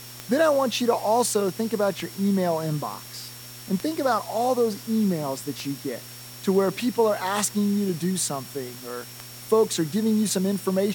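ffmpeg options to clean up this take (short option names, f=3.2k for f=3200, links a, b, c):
-af "adeclick=t=4,bandreject=f=121.5:t=h:w=4,bandreject=f=243:t=h:w=4,bandreject=f=364.5:t=h:w=4,bandreject=f=486:t=h:w=4,bandreject=f=607.5:t=h:w=4,bandreject=f=5.5k:w=30,afftdn=nr=28:nf=-41"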